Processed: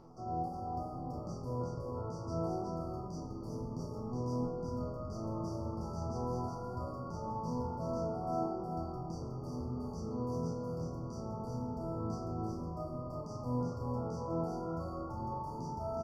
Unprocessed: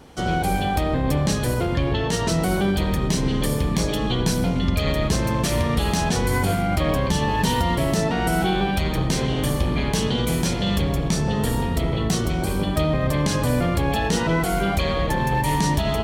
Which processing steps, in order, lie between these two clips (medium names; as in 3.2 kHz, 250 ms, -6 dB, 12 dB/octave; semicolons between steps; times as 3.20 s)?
treble shelf 3.8 kHz +11.5 dB; upward compressor, threshold -24 dBFS; flange 1.1 Hz, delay 5.4 ms, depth 6.1 ms, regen -44%; brick-wall FIR band-stop 1.4–4.5 kHz; distance through air 280 m; chord resonator E2 sus4, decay 0.57 s; delay 366 ms -3.5 dB